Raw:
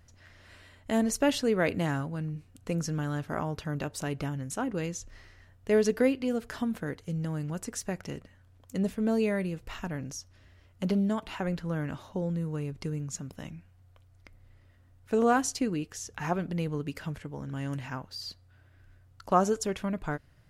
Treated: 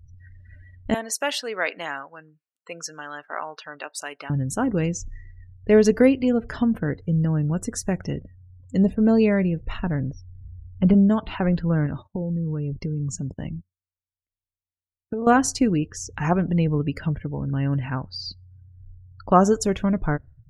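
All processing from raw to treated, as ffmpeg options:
-filter_complex "[0:a]asettb=1/sr,asplit=3[s0][s1][s2];[s0]atrim=end=0.944[s3];[s1]atrim=start=0.94:end=4.3,asetpts=PTS-STARTPTS,afade=t=in:d=0.004:c=qsin,afade=t=out:st=3.356:d=0.004:c=qsin,adynamicequalizer=threshold=0.002:dfrequency=6900:dqfactor=3.3:tfrequency=6900:tqfactor=3.3:attack=5:release=100:ratio=0.375:range=3.5:mode=cutabove:tftype=bell,highpass=860[s4];[s2]atrim=start=4.296[s5];[s3][s4]acrossfade=d=0.004:c1=hsin:c2=qsin[s6];[s6][s5]acrossfade=d=0.004:c1=qsin:c2=hsin,asettb=1/sr,asplit=3[s7][s8][s9];[s7]atrim=end=9.824[s10];[s8]atrim=start=9.82:end=10.94,asetpts=PTS-STARTPTS,afade=t=in:d=0.004:c=qsin,afade=t=out:st=1.116:d=0.004:c=qsin,deesser=0.95,lowpass=2900,asubboost=boost=4.5:cutoff=190[s11];[s9]atrim=start=10.936[s12];[s10][s11]acrossfade=d=0.004:c1=hsin:c2=qsin[s13];[s13][s12]acrossfade=d=0.004:c1=qsin:c2=hsin,asettb=1/sr,asplit=3[s14][s15][s16];[s14]atrim=end=11.864[s17];[s15]atrim=start=11.86:end=15.27,asetpts=PTS-STARTPTS,afade=t=in:d=0.004:c=qsin,afade=t=out:st=3.406:d=0.004:c=qsin,agate=range=0.1:threshold=0.00355:ratio=16:release=100:detection=peak,acompressor=threshold=0.0224:ratio=6:attack=3.2:release=140:knee=1:detection=peak[s18];[s16]atrim=start=15.266[s19];[s17][s18]acrossfade=d=0.004:c1=hsin:c2=qsin[s20];[s20][s19]acrossfade=d=0.004:c1=qsin:c2=hsin,afftdn=nr=36:nf=-47,lowshelf=f=200:g=8,volume=2.11"

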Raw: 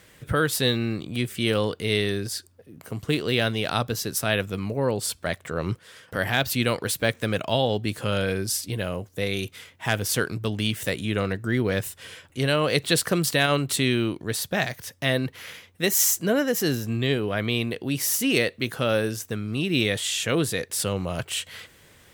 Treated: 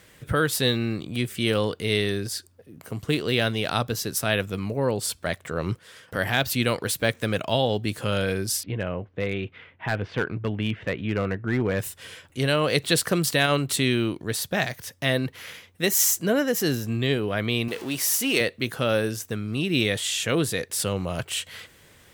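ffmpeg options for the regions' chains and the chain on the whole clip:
-filter_complex "[0:a]asettb=1/sr,asplit=3[s0][s1][s2];[s0]atrim=end=8.634[s3];[s1]atrim=start=8.63:end=11.79,asetpts=PTS-STARTPTS,afade=t=in:d=0.004:c=qsin,afade=t=out:st=3.156:d=0.004:c=qsin,lowpass=f=2700:w=0.5412,lowpass=f=2700:w=1.3066,asoftclip=type=hard:threshold=0.15[s4];[s2]atrim=start=11.786[s5];[s3][s4]acrossfade=d=0.004:c1=hsin:c2=qsin[s6];[s6][s5]acrossfade=d=0.004:c1=qsin:c2=hsin,asettb=1/sr,asplit=3[s7][s8][s9];[s7]atrim=end=17.684[s10];[s8]atrim=start=17.68:end=18.41,asetpts=PTS-STARTPTS,afade=t=in:d=0.004:c=qsin,afade=t=out:st=0.726:d=0.004:c=qsin,aeval=exprs='val(0)+0.5*0.0211*sgn(val(0))':c=same,highpass=f=350:p=1[s11];[s9]atrim=start=18.406[s12];[s10][s11]acrossfade=d=0.004:c1=hsin:c2=qsin[s13];[s13][s12]acrossfade=d=0.004:c1=qsin:c2=hsin"

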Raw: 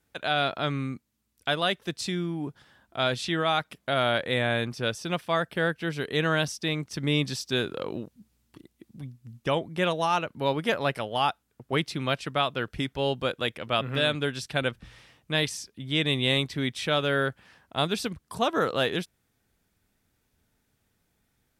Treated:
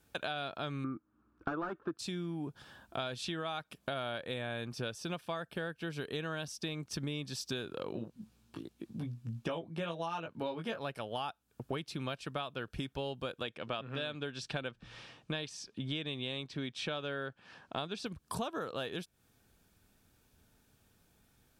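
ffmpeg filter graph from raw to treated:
-filter_complex "[0:a]asettb=1/sr,asplit=3[s0][s1][s2];[s0]atrim=end=0.844[s3];[s1]atrim=start=0.84:end=1.99,asetpts=PTS-STARTPTS,afade=t=in:d=0.004:c=qsin,afade=t=out:st=1.146:d=0.004:c=qsin,aeval=exprs='0.0708*(abs(mod(val(0)/0.0708+3,4)-2)-1)':c=same,lowpass=f=1300:t=q:w=4.7,equalizer=f=320:t=o:w=0.51:g=14.5[s4];[s2]atrim=start=1.986[s5];[s3][s4]acrossfade=d=0.004:c1=hsin:c2=qsin[s6];[s6][s5]acrossfade=d=0.004:c1=qsin:c2=hsin,asettb=1/sr,asplit=3[s7][s8][s9];[s7]atrim=end=7.924[s10];[s8]atrim=start=7.92:end=10.79,asetpts=PTS-STARTPTS,afade=t=in:d=0.004:c=qsin,afade=t=out:st=2.866:d=0.004:c=qsin,highpass=90,highshelf=f=7900:g=-10.5,asplit=2[s11][s12];[s12]adelay=18,volume=0.708[s13];[s11][s13]amix=inputs=2:normalize=0,atrim=end_sample=126567[s14];[s9]atrim=start=10.786[s15];[s10][s14]acrossfade=d=0.004:c1=hsin:c2=qsin[s16];[s16][s15]acrossfade=d=0.004:c1=qsin:c2=hsin,asettb=1/sr,asplit=3[s17][s18][s19];[s17]atrim=end=13.434[s20];[s18]atrim=start=13.43:end=18.06,asetpts=PTS-STARTPTS,afade=t=in:d=0.004:c=qsin,afade=t=out:st=4.626:d=0.004:c=qsin,lowpass=6000,equalizer=f=62:t=o:w=0.95:g=-13.5[s21];[s19]atrim=start=18.056[s22];[s20][s21]acrossfade=d=0.004:c1=hsin:c2=qsin[s23];[s23][s22]acrossfade=d=0.004:c1=qsin:c2=hsin,acompressor=threshold=0.0112:ratio=10,bandreject=f=2000:w=6.9,volume=1.58"

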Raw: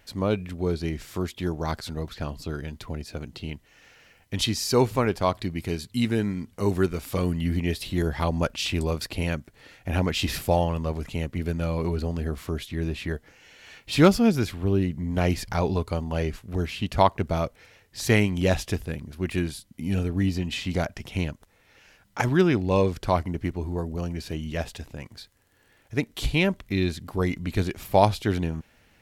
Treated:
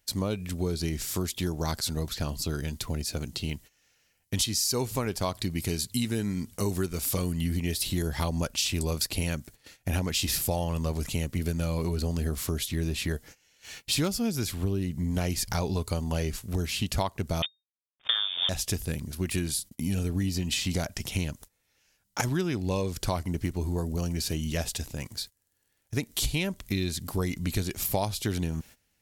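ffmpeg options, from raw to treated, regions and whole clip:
-filter_complex "[0:a]asettb=1/sr,asplit=3[s0][s1][s2];[s0]atrim=end=17.424[s3];[s1]atrim=start=17.42:end=18.49,asetpts=PTS-STARTPTS,afade=t=in:d=0.004:c=qsin,afade=t=out:st=1.066:d=0.004:c=qsin,aeval=exprs='val(0)*gte(abs(val(0)),0.0596)':c=same,lowpass=f=3100:t=q:w=0.5098,lowpass=f=3100:t=q:w=0.6013,lowpass=f=3100:t=q:w=0.9,lowpass=f=3100:t=q:w=2.563,afreqshift=-3700[s4];[s2]atrim=start=18.486[s5];[s3][s4]acrossfade=d=0.004:c1=hsin:c2=qsin[s6];[s6][s5]acrossfade=d=0.004:c1=qsin:c2=hsin,agate=range=0.126:threshold=0.00398:ratio=16:detection=peak,bass=f=250:g=3,treble=f=4000:g=15,acompressor=threshold=0.0562:ratio=6"

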